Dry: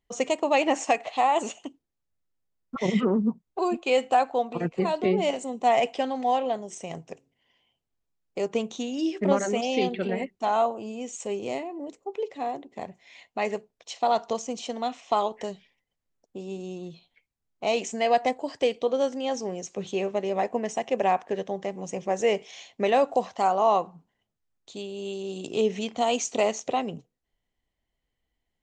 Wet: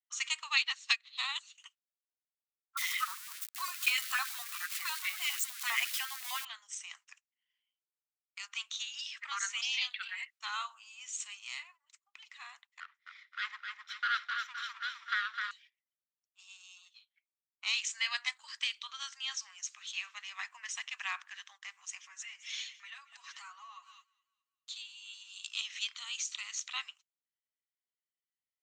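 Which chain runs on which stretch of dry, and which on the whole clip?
0.57–1.58 s: peaking EQ 4 kHz +14.5 dB 0.59 oct + upward expansion 2.5:1, over -31 dBFS
2.77–6.45 s: zero-crossing glitches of -26 dBFS + dynamic bell 3.4 kHz, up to -4 dB, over -43 dBFS, Q 0.97 + LFO high-pass saw up 9.9 Hz 480–2400 Hz
12.80–15.51 s: comb filter that takes the minimum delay 0.55 ms + distance through air 210 m + two-band feedback delay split 530 Hz, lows 197 ms, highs 258 ms, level -5 dB
22.03–25.34 s: comb 7.2 ms, depth 92% + feedback echo behind a high-pass 211 ms, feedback 41%, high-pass 1.9 kHz, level -17.5 dB + compression, threshold -34 dBFS
25.94–26.58 s: high-pass 840 Hz 6 dB/octave + compression 2.5:1, threshold -35 dBFS
whole clip: steep high-pass 1.2 kHz 48 dB/octave; gate -58 dBFS, range -15 dB; dynamic bell 3.9 kHz, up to +6 dB, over -51 dBFS, Q 2; trim -1 dB

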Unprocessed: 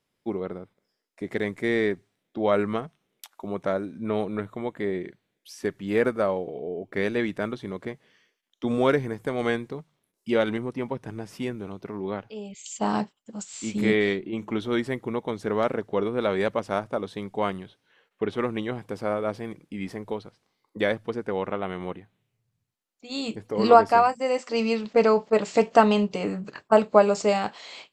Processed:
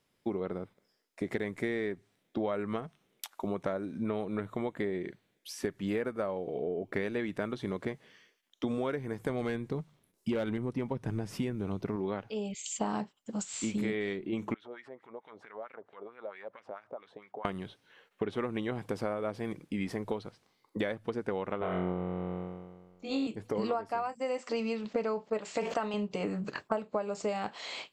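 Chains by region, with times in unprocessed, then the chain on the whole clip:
9.29–11.96 s: bass shelf 210 Hz +8.5 dB + hard clipper -16 dBFS
14.54–17.45 s: compression 12:1, threshold -35 dBFS + LFO band-pass sine 4.5 Hz 550–2300 Hz
21.59–23.27 s: low-pass 2.3 kHz 6 dB/octave + flutter echo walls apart 3.8 m, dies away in 1.4 s
25.39–25.94 s: bass shelf 390 Hz -9.5 dB + decay stretcher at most 86 dB/s
whole clip: dynamic bell 5.3 kHz, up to -4 dB, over -45 dBFS, Q 1.1; compression 10:1, threshold -32 dBFS; trim +2.5 dB

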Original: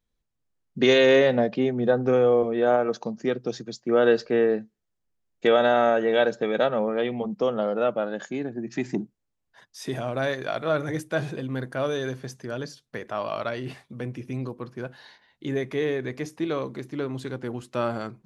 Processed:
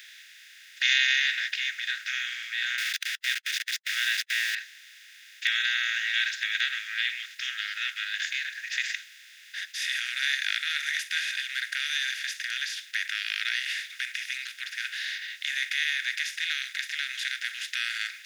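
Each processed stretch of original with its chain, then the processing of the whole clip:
2.78–4.55 s: treble shelf 6 kHz +11 dB + small samples zeroed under -33 dBFS
whole clip: spectral levelling over time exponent 0.4; steep high-pass 1.6 kHz 72 dB/octave

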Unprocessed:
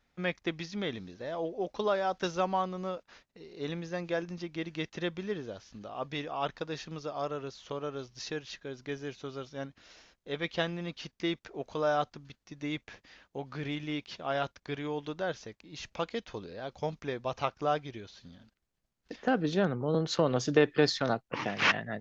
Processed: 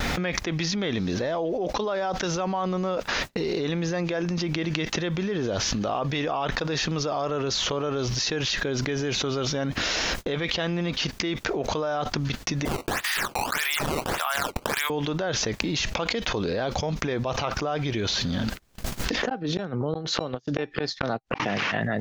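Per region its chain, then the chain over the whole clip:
12.65–14.90 s: high-pass 1 kHz 24 dB/octave + decimation with a swept rate 15×, swing 160% 1.7 Hz
19.29–21.40 s: Chebyshev low-pass 6 kHz + inverted gate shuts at -20 dBFS, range -37 dB + feedback comb 790 Hz, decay 0.21 s, harmonics odd, mix 30%
whole clip: upward compressor, threshold -37 dBFS; gate -58 dBFS, range -33 dB; level flattener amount 100%; trim -4.5 dB

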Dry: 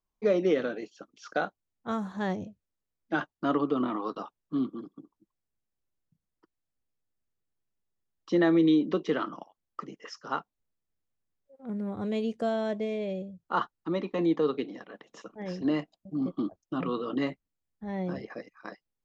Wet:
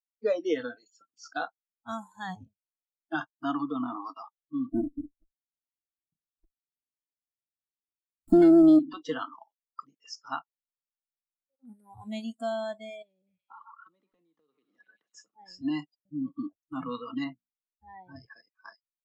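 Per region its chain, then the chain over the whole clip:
4.72–8.79 s: resonant low shelf 440 Hz +10 dB, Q 3 + compression 10:1, threshold -12 dBFS + sliding maximum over 17 samples
13.02–15.30 s: high-pass 60 Hz + repeats whose band climbs or falls 124 ms, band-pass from 1.2 kHz, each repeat 0.7 oct, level -9.5 dB + compression 8:1, threshold -41 dBFS
17.24–18.16 s: distance through air 230 m + hum notches 60/120/180/240/300 Hz
whole clip: dynamic bell 490 Hz, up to +3 dB, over -34 dBFS, Q 0.93; spectral noise reduction 27 dB; treble shelf 3.6 kHz +9.5 dB; trim -3.5 dB

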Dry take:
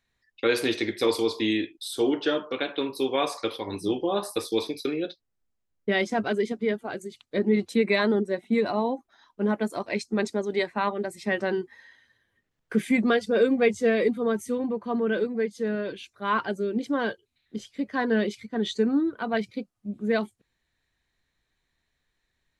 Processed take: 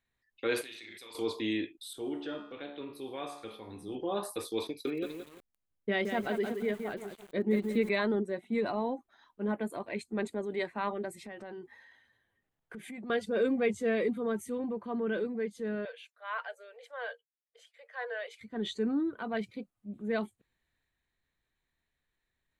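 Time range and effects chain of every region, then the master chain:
0.61–1.15 s: tilt shelf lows -9.5 dB, about 1.2 kHz + doubling 36 ms -5 dB + level held to a coarse grid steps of 21 dB
1.93–3.95 s: bass shelf 150 Hz +8.5 dB + feedback comb 72 Hz, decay 0.7 s, mix 70%
4.67–7.89 s: transient shaper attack +3 dB, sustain -5 dB + bit-crushed delay 172 ms, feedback 35%, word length 7-bit, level -8 dB
9.52–10.60 s: peaking EQ 5.5 kHz -13 dB 0.48 oct + band-stop 1.3 kHz, Q 14
11.26–13.10 s: peaking EQ 780 Hz +6 dB 0.57 oct + compression 8:1, threshold -33 dBFS
15.85–18.41 s: rippled Chebyshev high-pass 460 Hz, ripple 6 dB + expander -59 dBFS
whole clip: peaking EQ 5.3 kHz -8.5 dB 0.61 oct; transient shaper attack -3 dB, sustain +3 dB; trim -6.5 dB

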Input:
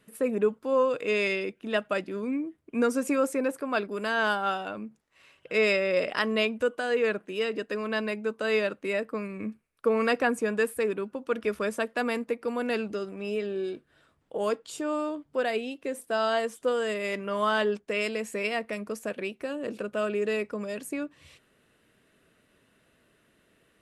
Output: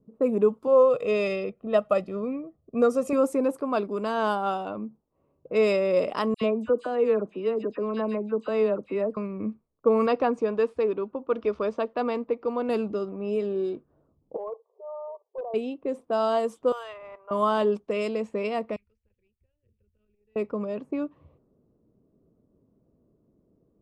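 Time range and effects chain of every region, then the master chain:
0.67–3.13 s: treble shelf 10 kHz -10.5 dB + comb 1.6 ms, depth 68%
6.34–9.17 s: treble shelf 3.2 kHz -11 dB + phase dispersion lows, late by 75 ms, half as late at 2 kHz
10.06–12.69 s: low-pass 5.2 kHz 24 dB/octave + peaking EQ 190 Hz -5.5 dB 0.85 oct
14.36–15.54 s: level held to a coarse grid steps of 12 dB + brick-wall FIR band-pass 390–1200 Hz + overload inside the chain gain 32 dB
16.72–17.31 s: high-pass 800 Hz 24 dB/octave + decimation joined by straight lines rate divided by 4×
18.76–20.36 s: inverse Chebyshev band-stop 160–1200 Hz + treble shelf 2.1 kHz -9 dB + transformer saturation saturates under 1.9 kHz
whole clip: FFT filter 700 Hz 0 dB, 1.2 kHz +5 dB, 1.7 kHz -8 dB; level-controlled noise filter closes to 400 Hz, open at -25.5 dBFS; peaking EQ 1.5 kHz -8.5 dB 0.99 oct; trim +4 dB

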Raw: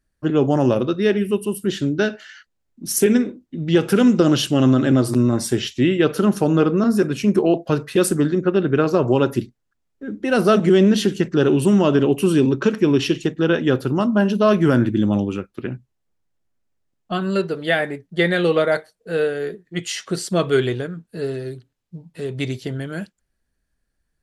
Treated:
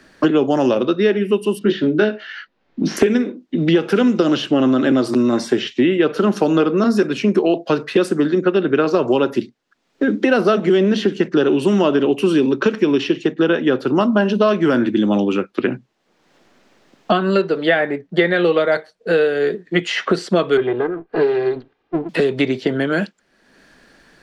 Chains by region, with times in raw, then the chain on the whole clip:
1.59–2.97 s: distance through air 220 m + doubling 19 ms -3 dB
20.57–22.09 s: comb filter that takes the minimum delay 2.5 ms + low-pass 1.4 kHz
whole clip: three-band isolator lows -23 dB, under 190 Hz, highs -19 dB, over 5.7 kHz; three bands compressed up and down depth 100%; trim +2.5 dB

